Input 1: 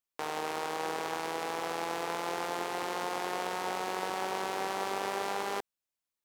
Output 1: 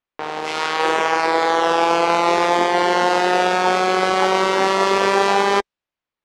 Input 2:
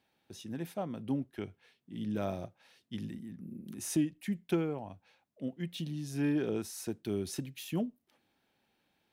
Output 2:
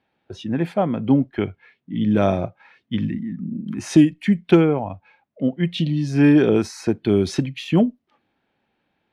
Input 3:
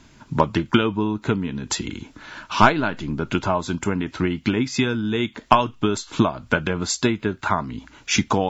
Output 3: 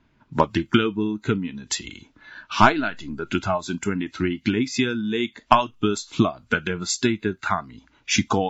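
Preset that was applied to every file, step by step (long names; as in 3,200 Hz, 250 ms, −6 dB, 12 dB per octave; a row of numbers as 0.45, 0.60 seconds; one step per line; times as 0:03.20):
low-pass that shuts in the quiet parts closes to 2,700 Hz, open at −21.5 dBFS
noise reduction from a noise print of the clip's start 11 dB
normalise the peak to −1.5 dBFS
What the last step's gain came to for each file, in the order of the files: +20.0, +17.0, −0.5 decibels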